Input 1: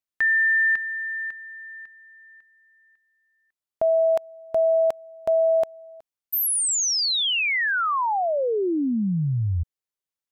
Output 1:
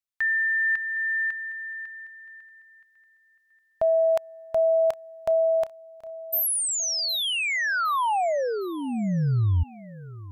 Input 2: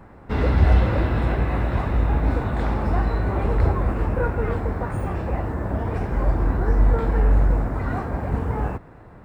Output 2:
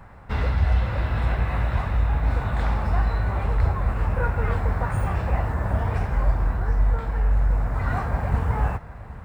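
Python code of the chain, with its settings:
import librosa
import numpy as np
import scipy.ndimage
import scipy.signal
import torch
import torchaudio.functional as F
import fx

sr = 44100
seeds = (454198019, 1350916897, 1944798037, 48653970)

y = fx.peak_eq(x, sr, hz=320.0, db=-12.5, octaves=1.4)
y = fx.rider(y, sr, range_db=4, speed_s=0.5)
y = fx.echo_feedback(y, sr, ms=761, feedback_pct=38, wet_db=-18)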